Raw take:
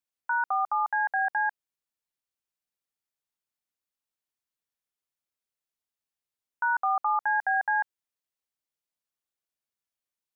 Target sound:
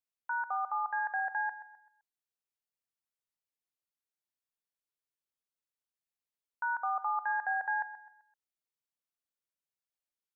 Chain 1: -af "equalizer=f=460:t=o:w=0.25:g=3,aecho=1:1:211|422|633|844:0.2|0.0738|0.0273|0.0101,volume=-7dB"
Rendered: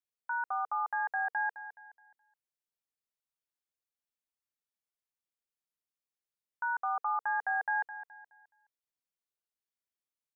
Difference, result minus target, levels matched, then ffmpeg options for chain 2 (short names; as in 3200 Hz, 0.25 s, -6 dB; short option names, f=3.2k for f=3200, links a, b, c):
echo 82 ms late
-af "equalizer=f=460:t=o:w=0.25:g=3,aecho=1:1:129|258|387|516:0.2|0.0738|0.0273|0.0101,volume=-7dB"